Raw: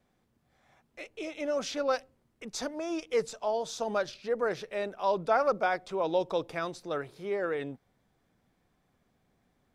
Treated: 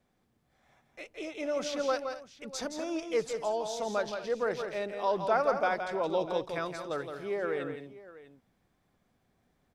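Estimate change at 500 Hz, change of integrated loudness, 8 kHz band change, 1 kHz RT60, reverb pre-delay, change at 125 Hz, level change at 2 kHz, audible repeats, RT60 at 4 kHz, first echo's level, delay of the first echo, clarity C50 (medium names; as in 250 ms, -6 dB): -0.5 dB, -1.0 dB, -0.5 dB, no reverb, no reverb, -0.5 dB, -0.5 dB, 3, no reverb, -7.0 dB, 168 ms, no reverb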